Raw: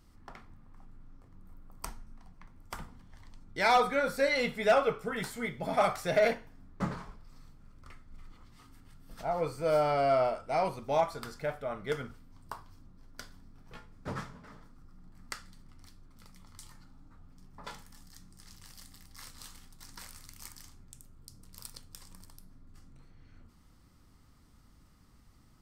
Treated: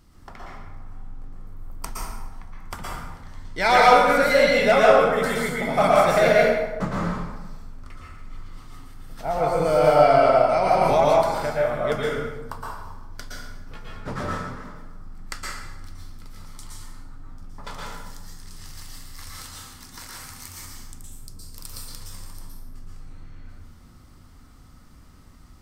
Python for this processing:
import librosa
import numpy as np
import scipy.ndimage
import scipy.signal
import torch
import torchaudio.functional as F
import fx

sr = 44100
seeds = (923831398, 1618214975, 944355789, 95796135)

y = fx.highpass(x, sr, hz=43.0, slope=12, at=(19.23, 20.48))
y = fx.rev_plate(y, sr, seeds[0], rt60_s=1.1, hf_ratio=0.65, predelay_ms=105, drr_db=-4.5)
y = fx.env_flatten(y, sr, amount_pct=50, at=(10.81, 11.21))
y = y * librosa.db_to_amplitude(5.5)